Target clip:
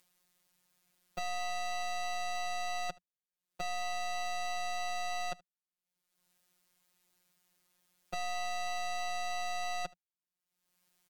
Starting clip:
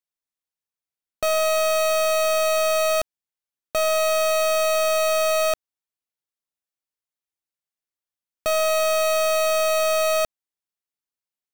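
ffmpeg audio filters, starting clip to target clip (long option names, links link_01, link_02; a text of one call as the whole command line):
ffmpeg -i in.wav -filter_complex "[0:a]acrossover=split=6100[link_01][link_02];[link_02]acompressor=threshold=-48dB:ratio=4:attack=1:release=60[link_03];[link_01][link_03]amix=inputs=2:normalize=0,equalizer=frequency=120:width=2:gain=13.5,acompressor=mode=upward:threshold=-40dB:ratio=2.5,afftfilt=real='hypot(re,im)*cos(PI*b)':imag='0':win_size=1024:overlap=0.75,asetrate=45864,aresample=44100,asplit=2[link_04][link_05];[link_05]aecho=0:1:75:0.0668[link_06];[link_04][link_06]amix=inputs=2:normalize=0,volume=-7.5dB" out.wav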